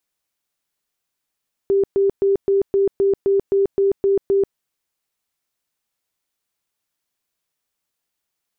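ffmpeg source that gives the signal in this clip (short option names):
-f lavfi -i "aevalsrc='0.224*sin(2*PI*394*mod(t,0.26))*lt(mod(t,0.26),54/394)':d=2.86:s=44100"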